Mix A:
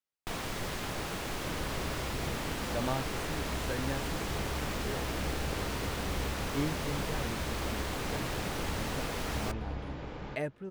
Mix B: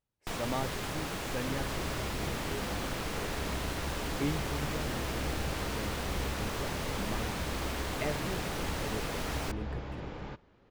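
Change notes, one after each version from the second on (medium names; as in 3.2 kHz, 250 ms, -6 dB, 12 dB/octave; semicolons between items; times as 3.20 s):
speech: entry -2.35 s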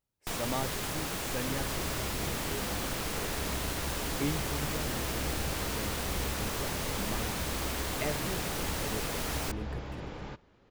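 master: add treble shelf 6.1 kHz +9.5 dB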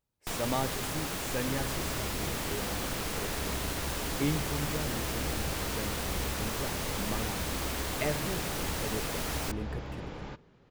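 speech: send on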